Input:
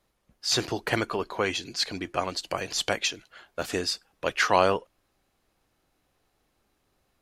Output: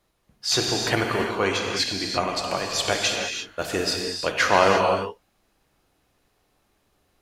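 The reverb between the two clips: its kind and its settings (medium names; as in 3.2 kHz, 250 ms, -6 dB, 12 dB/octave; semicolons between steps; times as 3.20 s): gated-style reverb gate 370 ms flat, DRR 0.5 dB; trim +2 dB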